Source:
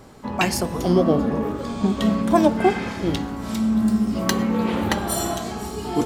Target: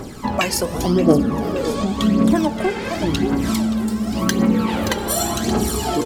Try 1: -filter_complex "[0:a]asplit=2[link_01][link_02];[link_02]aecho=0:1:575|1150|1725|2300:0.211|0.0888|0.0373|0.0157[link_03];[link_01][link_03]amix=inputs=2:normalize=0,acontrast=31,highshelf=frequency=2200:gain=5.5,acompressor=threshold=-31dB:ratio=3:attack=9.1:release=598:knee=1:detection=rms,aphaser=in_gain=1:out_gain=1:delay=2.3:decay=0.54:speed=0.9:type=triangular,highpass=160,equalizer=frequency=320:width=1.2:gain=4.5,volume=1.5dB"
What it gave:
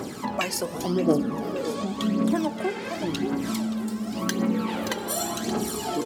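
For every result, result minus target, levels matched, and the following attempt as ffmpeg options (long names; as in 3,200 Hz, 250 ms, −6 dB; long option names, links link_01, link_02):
downward compressor: peak gain reduction +7 dB; 125 Hz band −2.5 dB
-filter_complex "[0:a]asplit=2[link_01][link_02];[link_02]aecho=0:1:575|1150|1725|2300:0.211|0.0888|0.0373|0.0157[link_03];[link_01][link_03]amix=inputs=2:normalize=0,acontrast=31,highshelf=frequency=2200:gain=5.5,acompressor=threshold=-20.5dB:ratio=3:attack=9.1:release=598:knee=1:detection=rms,aphaser=in_gain=1:out_gain=1:delay=2.3:decay=0.54:speed=0.9:type=triangular,highpass=160,equalizer=frequency=320:width=1.2:gain=4.5,volume=1.5dB"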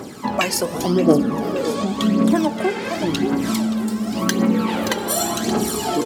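125 Hz band −2.5 dB
-filter_complex "[0:a]asplit=2[link_01][link_02];[link_02]aecho=0:1:575|1150|1725|2300:0.211|0.0888|0.0373|0.0157[link_03];[link_01][link_03]amix=inputs=2:normalize=0,acontrast=31,highshelf=frequency=2200:gain=5.5,acompressor=threshold=-20.5dB:ratio=3:attack=9.1:release=598:knee=1:detection=rms,aphaser=in_gain=1:out_gain=1:delay=2.3:decay=0.54:speed=0.9:type=triangular,equalizer=frequency=320:width=1.2:gain=4.5,volume=1.5dB"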